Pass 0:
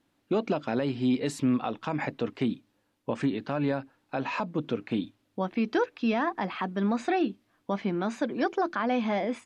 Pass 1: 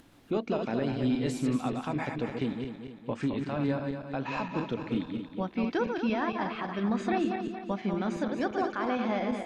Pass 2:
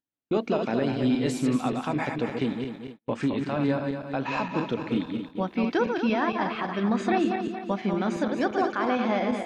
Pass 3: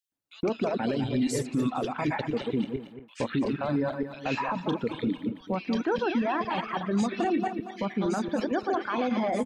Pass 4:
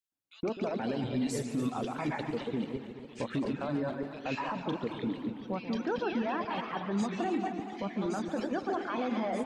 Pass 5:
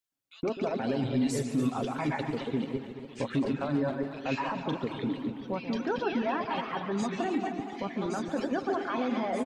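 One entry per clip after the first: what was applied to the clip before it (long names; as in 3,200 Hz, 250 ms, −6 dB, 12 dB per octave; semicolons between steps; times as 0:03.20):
feedback delay that plays each chunk backwards 115 ms, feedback 67%, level −5 dB; low-shelf EQ 76 Hz +10 dB; upward compression, threshold −40 dBFS; level −4 dB
low-shelf EQ 82 Hz −10 dB; noise gate −44 dBFS, range −43 dB; level +5 dB
reverb reduction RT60 1.8 s; brickwall limiter −24 dBFS, peak gain reduction 10 dB; multiband delay without the direct sound highs, lows 120 ms, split 2,100 Hz; level +5 dB
feedback echo with a swinging delay time 140 ms, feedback 73%, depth 205 cents, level −12 dB; level −5.5 dB
comb filter 7.4 ms, depth 35%; level +2 dB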